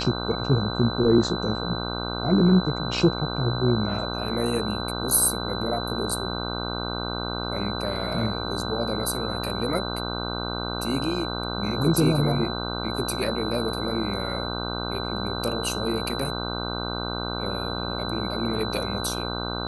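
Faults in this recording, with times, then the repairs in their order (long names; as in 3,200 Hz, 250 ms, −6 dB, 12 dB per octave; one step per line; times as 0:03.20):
mains buzz 60 Hz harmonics 26 −31 dBFS
whistle 4,000 Hz −33 dBFS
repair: notch filter 4,000 Hz, Q 30
hum removal 60 Hz, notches 26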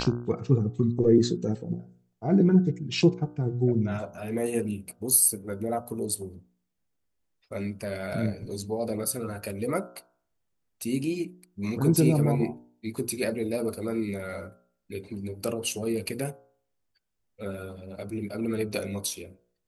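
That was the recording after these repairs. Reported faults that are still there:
none of them is left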